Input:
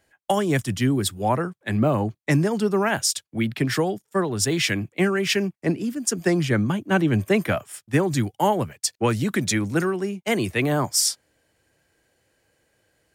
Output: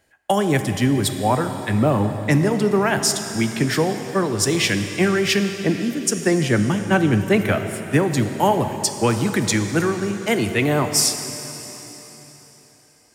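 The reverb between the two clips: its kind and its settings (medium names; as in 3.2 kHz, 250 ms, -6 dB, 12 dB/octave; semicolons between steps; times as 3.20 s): plate-style reverb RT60 3.9 s, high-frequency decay 1×, DRR 7 dB; trim +2.5 dB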